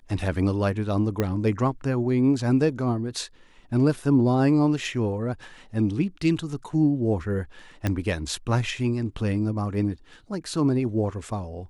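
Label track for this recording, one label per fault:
1.200000	1.200000	pop -11 dBFS
7.870000	7.870000	pop -11 dBFS

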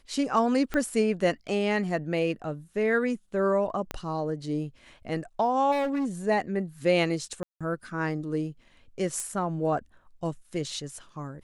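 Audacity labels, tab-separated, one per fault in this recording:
0.740000	0.740000	pop -16 dBFS
3.910000	3.910000	pop -16 dBFS
5.710000	6.060000	clipped -24.5 dBFS
7.430000	7.610000	gap 0.176 s
9.200000	9.200000	pop -19 dBFS

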